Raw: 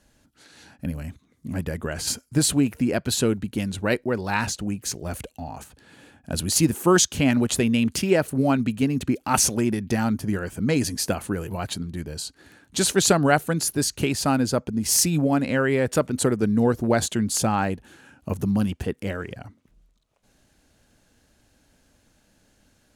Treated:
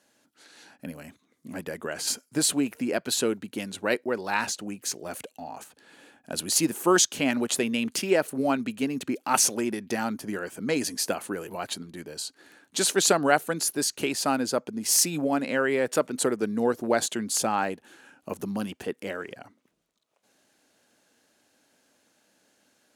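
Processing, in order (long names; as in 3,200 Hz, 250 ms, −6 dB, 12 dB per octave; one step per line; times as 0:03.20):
high-pass filter 300 Hz 12 dB per octave
level −1.5 dB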